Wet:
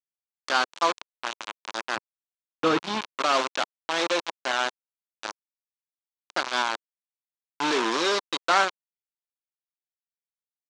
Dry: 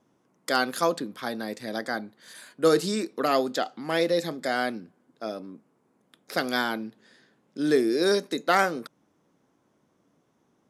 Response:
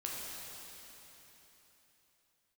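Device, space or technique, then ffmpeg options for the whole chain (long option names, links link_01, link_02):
hand-held game console: -filter_complex "[0:a]acrusher=bits=3:mix=0:aa=0.000001,highpass=440,equalizer=frequency=460:width_type=q:width=4:gain=-8,equalizer=frequency=690:width_type=q:width=4:gain=-4,equalizer=frequency=1000:width_type=q:width=4:gain=4,equalizer=frequency=1900:width_type=q:width=4:gain=-5,equalizer=frequency=5000:width_type=q:width=4:gain=-5,lowpass=frequency=5900:width=0.5412,lowpass=frequency=5900:width=1.3066,asettb=1/sr,asplit=3[link_01][link_02][link_03];[link_01]atrim=end=1.964[link_04];[link_02]atrim=start=1.96:end=3.01,asetpts=PTS-STARTPTS,afade=type=in:duration=0.004:curve=qsin,afade=type=out:start_time=1.046:duration=0.004:curve=qsin,bass=frequency=250:gain=15,treble=frequency=4000:gain=-9[link_05];[link_03]atrim=start=3.006[link_06];[link_04][link_05]acrossfade=duration=0.004:curve1=hsin:curve2=qsin[link_07];[link_07][link_06]acrossfade=duration=0.004:curve1=qsin:curve2=hsin,volume=2.5dB"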